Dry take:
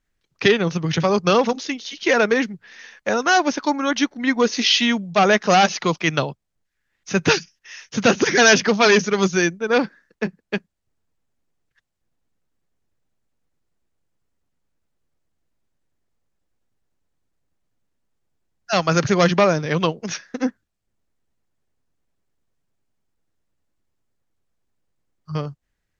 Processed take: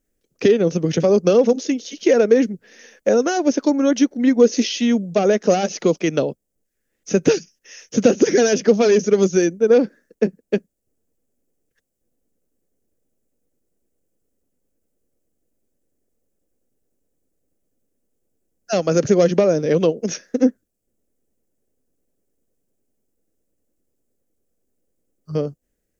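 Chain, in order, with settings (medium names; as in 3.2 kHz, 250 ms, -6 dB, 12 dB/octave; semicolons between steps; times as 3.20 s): treble shelf 4.9 kHz +11 dB; compression 3:1, threshold -17 dBFS, peak gain reduction 8.5 dB; ten-band graphic EQ 125 Hz -4 dB, 250 Hz +7 dB, 500 Hz +11 dB, 1 kHz -10 dB, 2 kHz -4 dB, 4 kHz -9 dB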